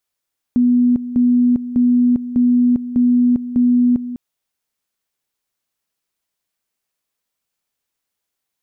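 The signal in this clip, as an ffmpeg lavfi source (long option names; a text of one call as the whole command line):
ffmpeg -f lavfi -i "aevalsrc='pow(10,(-10-13*gte(mod(t,0.6),0.4))/20)*sin(2*PI*245*t)':duration=3.6:sample_rate=44100" out.wav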